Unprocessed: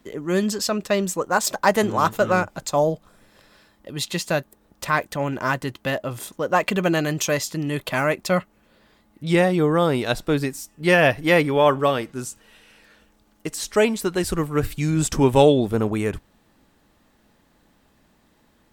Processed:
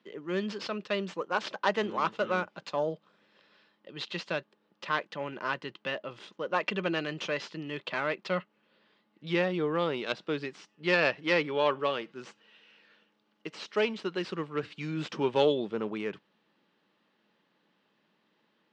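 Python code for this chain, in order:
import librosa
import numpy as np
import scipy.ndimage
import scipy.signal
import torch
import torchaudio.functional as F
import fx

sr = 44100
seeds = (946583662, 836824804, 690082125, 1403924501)

y = fx.tracing_dist(x, sr, depth_ms=0.17)
y = fx.cabinet(y, sr, low_hz=180.0, low_slope=24, high_hz=4700.0, hz=(260.0, 710.0, 2900.0), db=(-8, -6, 5))
y = y * librosa.db_to_amplitude(-8.5)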